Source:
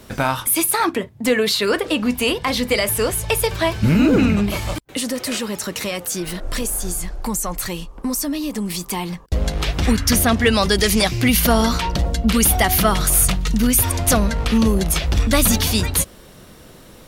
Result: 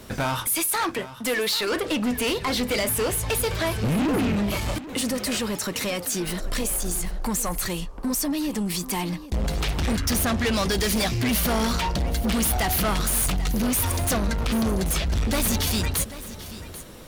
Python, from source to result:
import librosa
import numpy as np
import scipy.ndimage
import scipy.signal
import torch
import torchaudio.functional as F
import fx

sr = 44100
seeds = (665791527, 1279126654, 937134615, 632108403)

p1 = fx.low_shelf(x, sr, hz=380.0, db=-10.0, at=(0.55, 1.72))
p2 = 10.0 ** (-20.5 / 20.0) * np.tanh(p1 / 10.0 ** (-20.5 / 20.0))
y = p2 + fx.echo_single(p2, sr, ms=788, db=-15.0, dry=0)